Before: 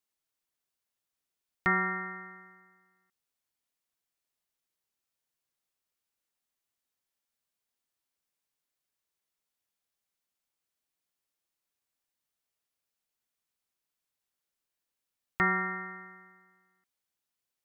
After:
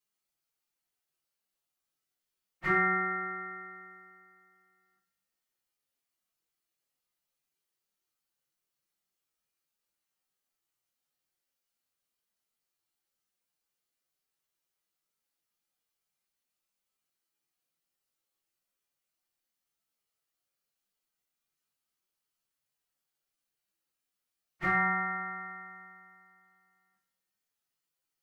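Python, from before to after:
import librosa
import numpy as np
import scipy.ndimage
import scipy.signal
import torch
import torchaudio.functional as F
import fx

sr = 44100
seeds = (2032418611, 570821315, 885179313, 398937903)

y = fx.stretch_vocoder_free(x, sr, factor=1.6)
y = fx.rev_double_slope(y, sr, seeds[0], early_s=0.5, late_s=1.7, knee_db=-19, drr_db=-7.0)
y = y * 10.0 ** (-5.0 / 20.0)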